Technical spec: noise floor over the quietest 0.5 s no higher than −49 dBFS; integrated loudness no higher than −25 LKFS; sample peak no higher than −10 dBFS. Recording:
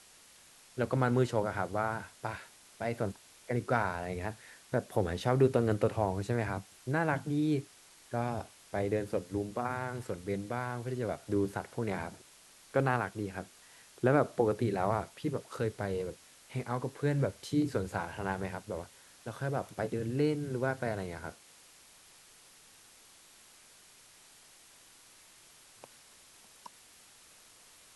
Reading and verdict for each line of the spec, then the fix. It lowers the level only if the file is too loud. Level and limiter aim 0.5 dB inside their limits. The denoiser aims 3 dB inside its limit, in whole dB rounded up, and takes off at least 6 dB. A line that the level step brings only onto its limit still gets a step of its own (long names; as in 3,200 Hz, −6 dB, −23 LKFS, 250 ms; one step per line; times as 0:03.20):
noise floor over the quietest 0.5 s −59 dBFS: in spec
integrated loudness −33.5 LKFS: in spec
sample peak −12.5 dBFS: in spec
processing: no processing needed